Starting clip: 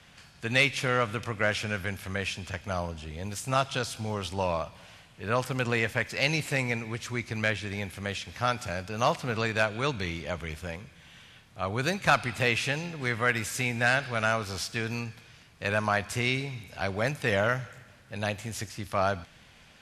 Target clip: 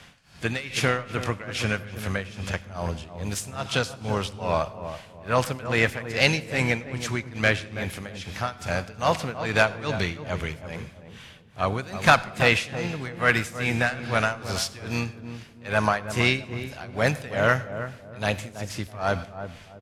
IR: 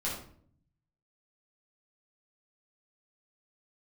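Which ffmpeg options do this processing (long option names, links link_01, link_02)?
-filter_complex "[0:a]acontrast=85,tremolo=f=2.4:d=0.93,asplit=3[link_01][link_02][link_03];[link_02]asetrate=33038,aresample=44100,atempo=1.33484,volume=-17dB[link_04];[link_03]asetrate=58866,aresample=44100,atempo=0.749154,volume=-17dB[link_05];[link_01][link_04][link_05]amix=inputs=3:normalize=0,asplit=2[link_06][link_07];[link_07]adelay=326,lowpass=frequency=890:poles=1,volume=-9dB,asplit=2[link_08][link_09];[link_09]adelay=326,lowpass=frequency=890:poles=1,volume=0.33,asplit=2[link_10][link_11];[link_11]adelay=326,lowpass=frequency=890:poles=1,volume=0.33,asplit=2[link_12][link_13];[link_13]adelay=326,lowpass=frequency=890:poles=1,volume=0.33[link_14];[link_06][link_08][link_10][link_12][link_14]amix=inputs=5:normalize=0,asplit=2[link_15][link_16];[1:a]atrim=start_sample=2205,adelay=81[link_17];[link_16][link_17]afir=irnorm=-1:irlink=0,volume=-25dB[link_18];[link_15][link_18]amix=inputs=2:normalize=0"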